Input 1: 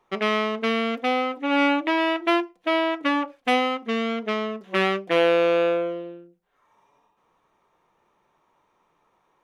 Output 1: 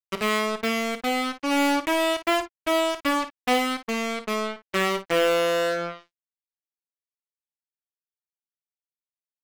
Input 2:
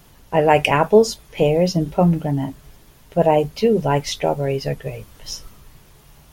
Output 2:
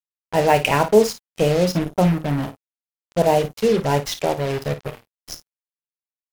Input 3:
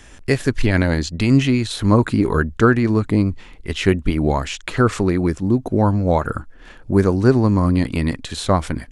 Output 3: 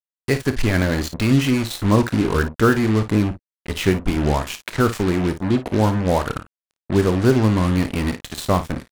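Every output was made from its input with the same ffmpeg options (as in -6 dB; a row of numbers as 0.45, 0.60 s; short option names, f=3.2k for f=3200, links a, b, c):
-af "acrusher=bits=3:mix=0:aa=0.5,aecho=1:1:28|54:0.2|0.237,volume=-2dB"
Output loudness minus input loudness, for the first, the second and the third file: -1.5, -1.5, -1.5 LU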